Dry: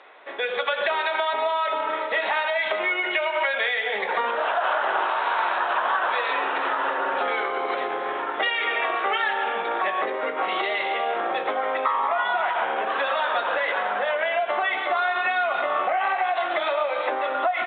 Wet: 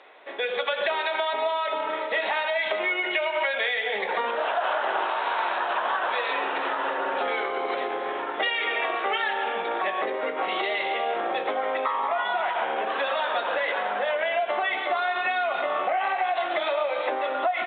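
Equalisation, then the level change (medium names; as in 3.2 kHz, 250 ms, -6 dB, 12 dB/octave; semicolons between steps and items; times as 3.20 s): peaking EQ 1.3 kHz -4.5 dB 1.1 oct; hum notches 50/100/150 Hz; 0.0 dB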